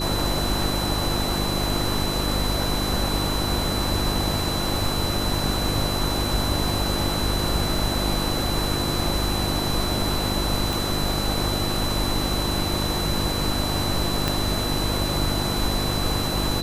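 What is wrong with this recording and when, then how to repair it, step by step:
hum 50 Hz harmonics 7 -28 dBFS
whine 4 kHz -29 dBFS
10.73 s: pop
14.28 s: pop -7 dBFS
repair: de-click; band-stop 4 kHz, Q 30; de-hum 50 Hz, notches 7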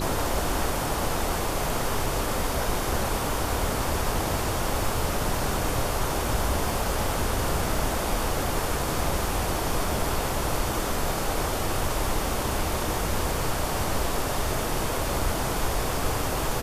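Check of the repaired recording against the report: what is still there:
10.73 s: pop
14.28 s: pop

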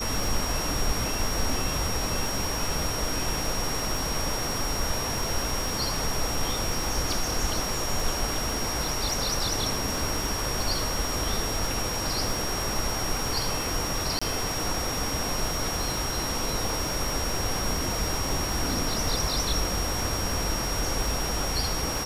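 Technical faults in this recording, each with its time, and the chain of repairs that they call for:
crackle 30 per s -31 dBFS
whine 5.6 kHz -32 dBFS
14.19–14.21 s: dropout 25 ms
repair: de-click; band-stop 5.6 kHz, Q 30; interpolate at 14.19 s, 25 ms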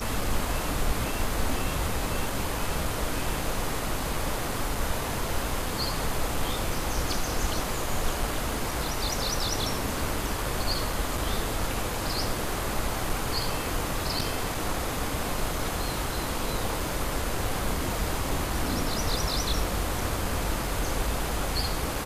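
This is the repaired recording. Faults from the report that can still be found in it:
nothing left

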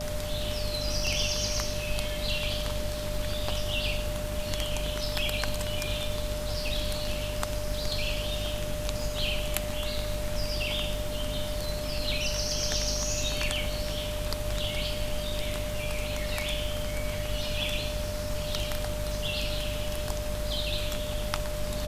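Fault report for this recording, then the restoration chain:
crackle 24 per s -37 dBFS
hum 50 Hz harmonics 5 -36 dBFS
whine 600 Hz -35 dBFS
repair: de-click; de-hum 50 Hz, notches 5; band-stop 600 Hz, Q 30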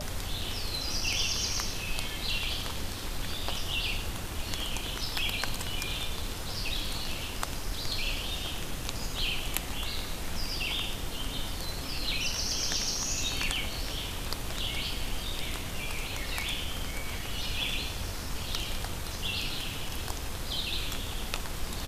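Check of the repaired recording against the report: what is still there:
nothing left

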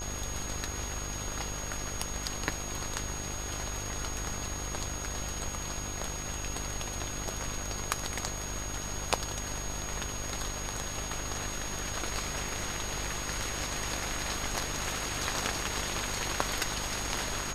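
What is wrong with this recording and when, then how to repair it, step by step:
buzz 50 Hz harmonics 30 -41 dBFS
whine 6.6 kHz -39 dBFS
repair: de-hum 50 Hz, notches 30; band-stop 6.6 kHz, Q 30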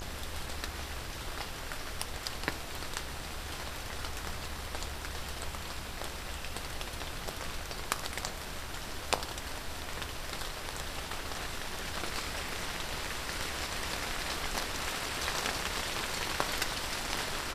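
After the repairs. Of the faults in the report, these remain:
nothing left

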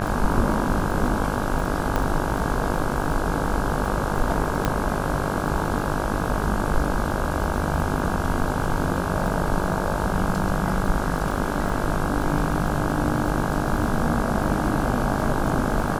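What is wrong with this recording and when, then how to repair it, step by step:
buzz 50 Hz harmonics 33 -28 dBFS
crackle 35 per s -29 dBFS
1.96 s: pop -11 dBFS
4.65 s: pop -7 dBFS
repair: de-click; de-hum 50 Hz, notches 33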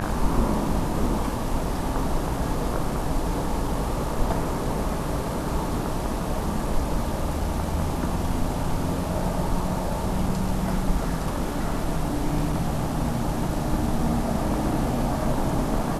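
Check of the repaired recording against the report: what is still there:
nothing left

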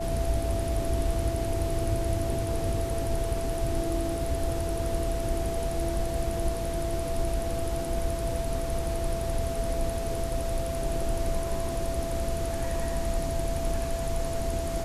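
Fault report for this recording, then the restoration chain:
whine 670 Hz -32 dBFS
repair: band-stop 670 Hz, Q 30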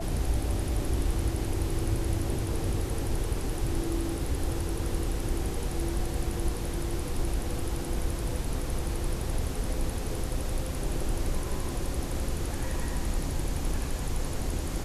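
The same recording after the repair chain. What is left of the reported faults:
nothing left

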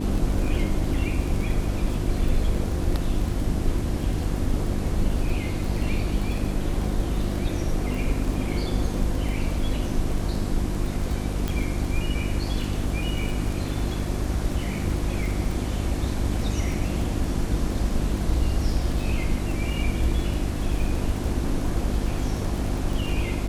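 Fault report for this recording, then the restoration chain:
crackle 20 per s -28 dBFS
hum 50 Hz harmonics 7 -29 dBFS
11.48 s: pop -13 dBFS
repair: de-click; de-hum 50 Hz, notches 7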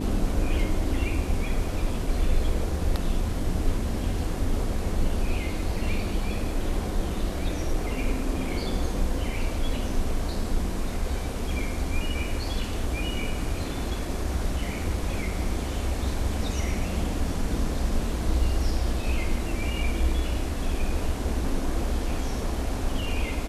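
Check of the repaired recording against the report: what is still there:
nothing left

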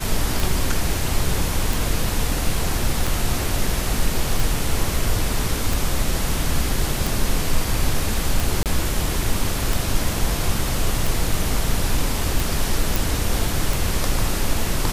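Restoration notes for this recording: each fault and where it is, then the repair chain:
tick 45 rpm
8.63–8.66 s: dropout 28 ms
12.96 s: pop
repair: de-click; interpolate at 8.63 s, 28 ms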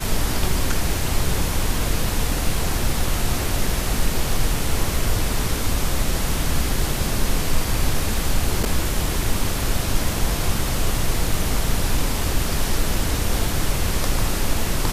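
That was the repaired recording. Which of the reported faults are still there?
nothing left

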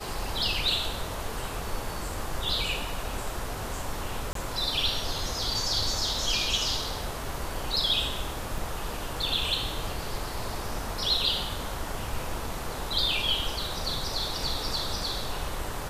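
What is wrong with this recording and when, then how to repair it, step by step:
4.33–4.35 s: dropout 23 ms
8.58 s: dropout 2.6 ms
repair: interpolate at 4.33 s, 23 ms; interpolate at 8.58 s, 2.6 ms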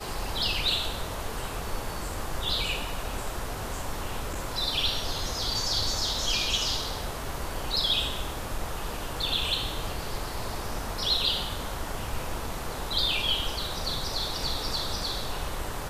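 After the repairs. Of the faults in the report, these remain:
nothing left

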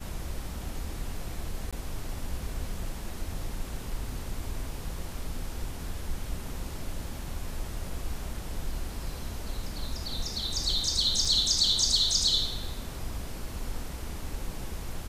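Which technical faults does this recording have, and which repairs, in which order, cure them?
1.71–1.73 s: dropout 16 ms
11.25 s: dropout 3.2 ms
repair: interpolate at 1.71 s, 16 ms; interpolate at 11.25 s, 3.2 ms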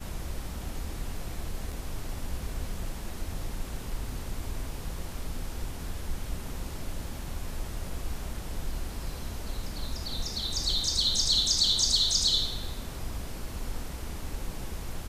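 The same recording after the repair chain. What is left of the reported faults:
nothing left

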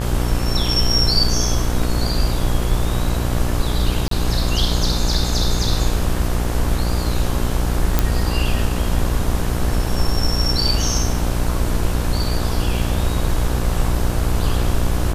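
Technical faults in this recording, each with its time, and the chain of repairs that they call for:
buzz 60 Hz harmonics 29 -22 dBFS
4.08–4.11 s: dropout 33 ms
7.99 s: pop -1 dBFS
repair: de-click; de-hum 60 Hz, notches 29; interpolate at 4.08 s, 33 ms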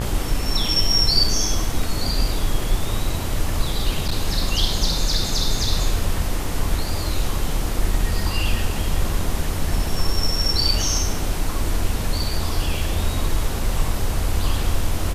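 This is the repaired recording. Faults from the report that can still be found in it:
nothing left

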